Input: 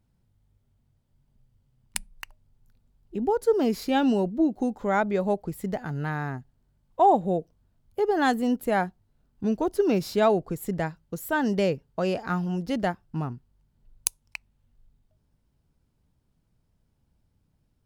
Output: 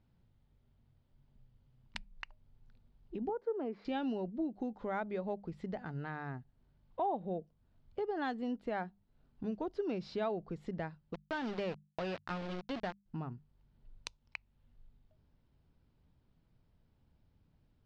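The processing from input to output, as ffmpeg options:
-filter_complex "[0:a]asettb=1/sr,asplit=3[a][b][c];[a]atrim=end=3.294[d];[b]atrim=start=3.29:end=3.85,asetpts=PTS-STARTPTS,afade=t=in:d=0.004:c=qsin,afade=t=out:st=0.556:d=0.004:c=qsin,acrossover=split=230 2100:gain=0.112 1 0.0708[e][f][g];[e][f][g]amix=inputs=3:normalize=0[h];[c]atrim=start=3.846[i];[d][h]acrossfade=d=0.004:c1=hsin:c2=qsin[j];[j][i]acrossfade=d=0.004:c1=qsin:c2=hsin,asettb=1/sr,asplit=3[k][l][m];[k]atrim=end=11.144[n];[l]atrim=start=11.14:end=13.06,asetpts=PTS-STARTPTS,afade=t=in:d=0.004:c=qsin,afade=t=out:st=1.916:d=0.004:c=qsin,aeval=exprs='val(0)*gte(abs(val(0)),0.0447)':c=same[o];[m]atrim=start=13.056[p];[n][o]acrossfade=d=0.004:c1=hsin:c2=qsin[q];[q][p]acrossfade=d=0.004:c1=qsin:c2=hsin,lowpass=f=4.5k:w=0.5412,lowpass=f=4.5k:w=1.3066,acompressor=threshold=-45dB:ratio=2,bandreject=f=50:t=h:w=6,bandreject=f=100:t=h:w=6,bandreject=f=150:t=h:w=6,bandreject=f=200:t=h:w=6"

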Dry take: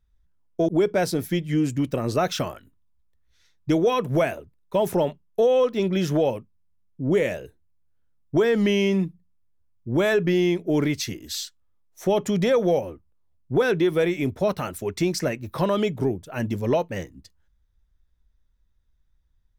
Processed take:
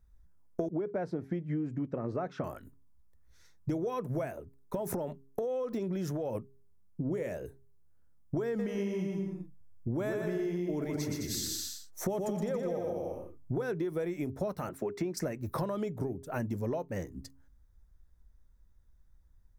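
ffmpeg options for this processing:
-filter_complex "[0:a]asettb=1/sr,asplit=3[a][b][c];[a]atrim=end=0.704[d];[b]atrim=start=0.7:end=2.44,asetpts=PTS-STARTPTS,afade=t=in:d=0.004:c=qsin,afade=t=out:st=1.736:d=0.004:c=qsin,highpass=100,lowpass=2.1k[e];[c]atrim=start=2.436[f];[d][e]acrossfade=d=0.004:c1=hsin:c2=qsin[g];[g][f]acrossfade=d=0.004:c1=qsin:c2=hsin,asettb=1/sr,asplit=3[h][i][j];[h]atrim=end=4.314[k];[i]atrim=start=4.31:end=6.35,asetpts=PTS-STARTPTS,afade=t=in:d=0.004:c=qsin,afade=t=out:st=2.036:d=0.004:c=qsin,acompressor=threshold=-29dB:ratio=6:attack=3.2:release=140:knee=1:detection=peak[l];[j]atrim=start=6.346[m];[k][l]acrossfade=d=0.004:c1=hsin:c2=qsin[n];[n][m]acrossfade=d=0.004:c1=qsin:c2=hsin,asettb=1/sr,asplit=3[o][p][q];[o]atrim=end=8.474[r];[p]atrim=start=8.47:end=13.56,asetpts=PTS-STARTPTS,afade=t=in:d=0.004:c=qsin,afade=t=out:st=5.086:d=0.004:c=qsin,aecho=1:1:120|210|277.5|328.1|366.1|394.6|415.9:0.631|0.398|0.251|0.158|0.1|0.0631|0.0398,atrim=end_sample=224469[s];[q]atrim=start=13.556[t];[r][s]acrossfade=d=0.004:c1=hsin:c2=qsin[u];[u][t]acrossfade=d=0.004:c1=qsin:c2=hsin,asettb=1/sr,asplit=3[v][w][x];[v]atrim=end=14.694[y];[w]atrim=start=14.69:end=15.17,asetpts=PTS-STARTPTS,afade=t=in:d=0.004:c=qsin,afade=t=out:st=0.476:d=0.004:c=qsin,acrossover=split=170 3500:gain=0.158 1 0.2[z][aa][ab];[z][aa][ab]amix=inputs=3:normalize=0[ac];[x]atrim=start=15.166[ad];[y][ac]acrossfade=d=0.004:c1=hsin:c2=qsin[ae];[ae][ad]acrossfade=d=0.004:c1=qsin:c2=hsin,equalizer=f=3.1k:t=o:w=1.2:g=-12,acompressor=threshold=-35dB:ratio=12,bandreject=f=135.3:t=h:w=4,bandreject=f=270.6:t=h:w=4,bandreject=f=405.9:t=h:w=4,volume=4.5dB"

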